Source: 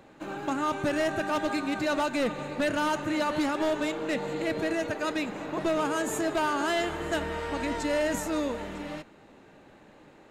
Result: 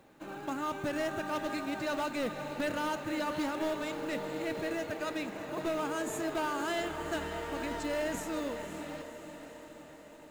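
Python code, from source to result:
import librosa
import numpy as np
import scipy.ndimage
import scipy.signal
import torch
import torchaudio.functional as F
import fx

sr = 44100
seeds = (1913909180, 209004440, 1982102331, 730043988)

y = fx.echo_diffused(x, sr, ms=535, feedback_pct=61, wet_db=-10.0)
y = fx.quant_companded(y, sr, bits=6)
y = F.gain(torch.from_numpy(y), -6.5).numpy()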